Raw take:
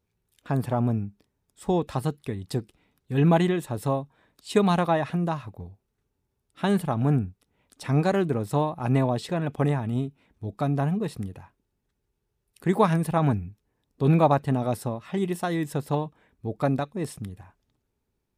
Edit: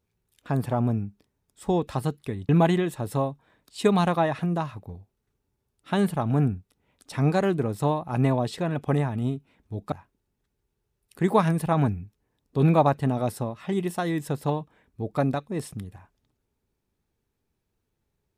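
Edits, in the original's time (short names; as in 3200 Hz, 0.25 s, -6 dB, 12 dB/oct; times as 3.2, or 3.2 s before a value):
2.49–3.2 cut
10.63–11.37 cut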